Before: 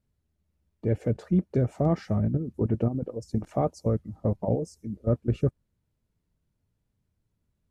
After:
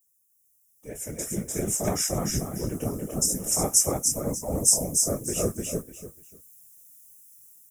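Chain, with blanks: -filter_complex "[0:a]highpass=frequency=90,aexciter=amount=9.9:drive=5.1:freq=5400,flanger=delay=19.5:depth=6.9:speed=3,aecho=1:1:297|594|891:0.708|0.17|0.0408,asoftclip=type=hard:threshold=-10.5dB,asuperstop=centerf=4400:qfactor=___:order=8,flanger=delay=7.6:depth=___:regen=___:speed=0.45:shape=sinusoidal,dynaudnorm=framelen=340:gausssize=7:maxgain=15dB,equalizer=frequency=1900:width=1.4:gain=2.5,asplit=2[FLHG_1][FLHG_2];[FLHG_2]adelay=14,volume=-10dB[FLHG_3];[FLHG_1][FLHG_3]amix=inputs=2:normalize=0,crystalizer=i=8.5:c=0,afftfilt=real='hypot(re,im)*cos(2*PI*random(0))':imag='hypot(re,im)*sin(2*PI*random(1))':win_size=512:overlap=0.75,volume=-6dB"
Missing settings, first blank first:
4.2, 6.5, -62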